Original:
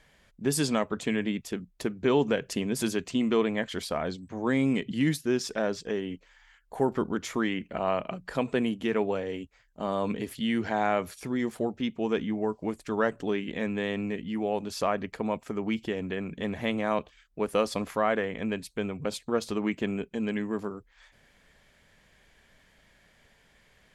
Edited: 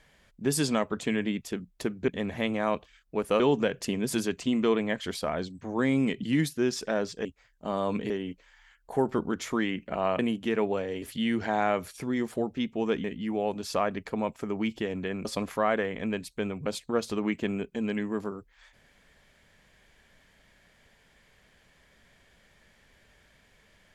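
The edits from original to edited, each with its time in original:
8.02–8.57 cut
9.4–10.25 move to 5.93
12.27–14.11 cut
16.32–17.64 move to 2.08

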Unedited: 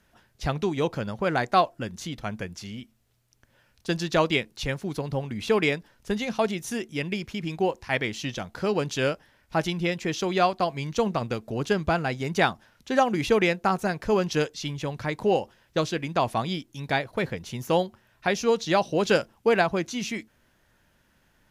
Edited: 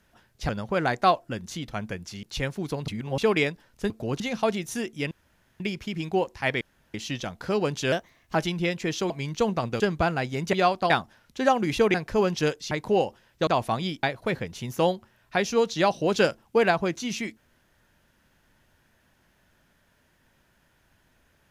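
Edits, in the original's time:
0.49–0.99 cut
2.73–4.49 cut
5.14–5.44 reverse
7.07 insert room tone 0.49 s
8.08 insert room tone 0.33 s
9.06–9.56 speed 116%
10.31–10.68 move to 12.41
11.38–11.68 move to 6.16
13.45–13.88 cut
14.65–15.06 cut
15.82–16.13 cut
16.69–16.94 cut

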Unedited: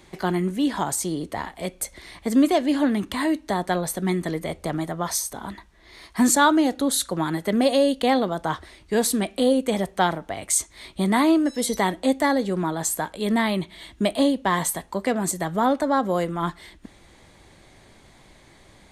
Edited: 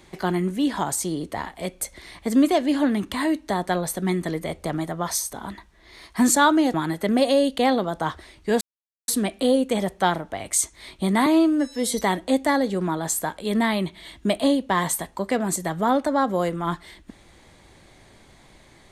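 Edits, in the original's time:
6.74–7.18 cut
9.05 insert silence 0.47 s
11.23–11.66 stretch 1.5×

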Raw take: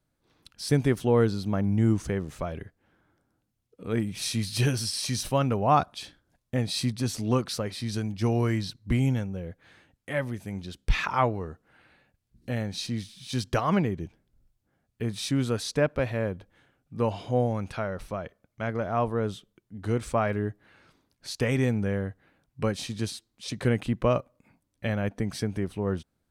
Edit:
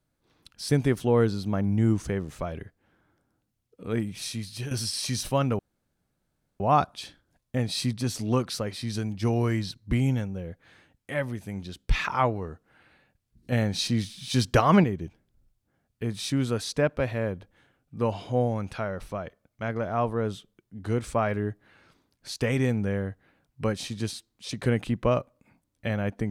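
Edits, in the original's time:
3.89–4.71 fade out, to -12.5 dB
5.59 insert room tone 1.01 s
12.51–13.83 gain +5.5 dB

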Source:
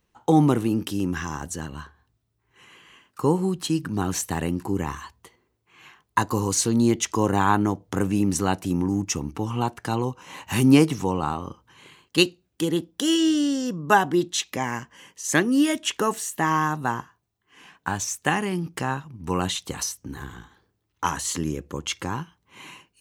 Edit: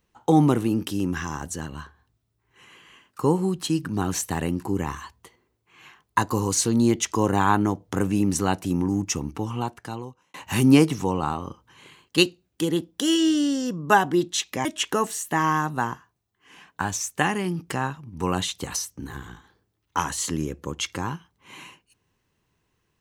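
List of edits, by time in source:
9.31–10.34 fade out
14.65–15.72 cut

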